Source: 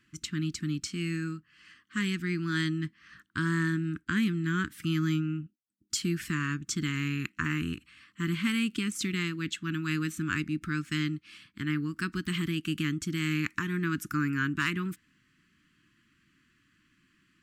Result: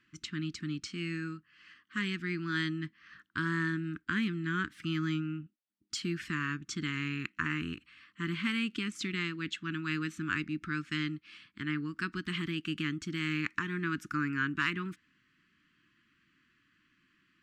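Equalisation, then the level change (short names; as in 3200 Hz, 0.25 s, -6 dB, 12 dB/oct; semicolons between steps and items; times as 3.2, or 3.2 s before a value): air absorption 68 m; low shelf 270 Hz -8 dB; bell 8500 Hz -4.5 dB 1.1 oct; 0.0 dB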